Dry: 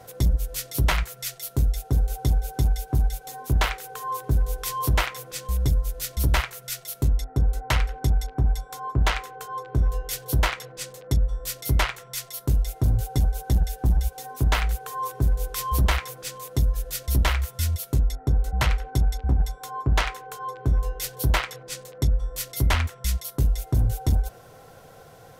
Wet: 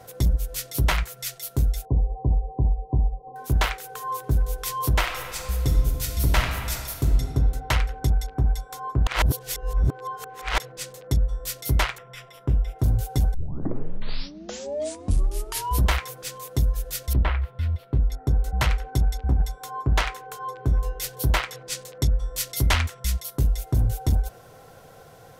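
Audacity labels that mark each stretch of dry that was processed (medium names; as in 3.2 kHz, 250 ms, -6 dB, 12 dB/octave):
1.850000	3.360000	brick-wall FIR low-pass 1.1 kHz
4.990000	7.200000	reverb throw, RT60 2.1 s, DRR 2.5 dB
9.070000	10.580000	reverse
11.980000	12.790000	Savitzky-Golay filter over 25 samples
13.340000	13.340000	tape start 2.52 s
17.130000	18.120000	distance through air 450 m
21.530000	23.000000	peaking EQ 5.5 kHz +4.5 dB 2.8 oct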